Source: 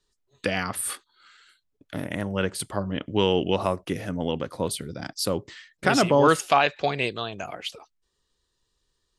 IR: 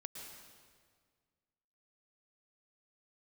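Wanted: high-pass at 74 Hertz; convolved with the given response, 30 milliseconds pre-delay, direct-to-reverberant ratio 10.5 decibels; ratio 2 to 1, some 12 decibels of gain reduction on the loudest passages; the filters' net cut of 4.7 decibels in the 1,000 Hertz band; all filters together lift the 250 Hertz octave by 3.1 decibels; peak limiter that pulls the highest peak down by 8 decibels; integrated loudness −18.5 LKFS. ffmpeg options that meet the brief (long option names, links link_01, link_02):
-filter_complex "[0:a]highpass=74,equalizer=frequency=250:width_type=o:gain=4.5,equalizer=frequency=1000:width_type=o:gain=-7,acompressor=threshold=-37dB:ratio=2,alimiter=limit=-23dB:level=0:latency=1,asplit=2[link_01][link_02];[1:a]atrim=start_sample=2205,adelay=30[link_03];[link_02][link_03]afir=irnorm=-1:irlink=0,volume=-7dB[link_04];[link_01][link_04]amix=inputs=2:normalize=0,volume=18dB"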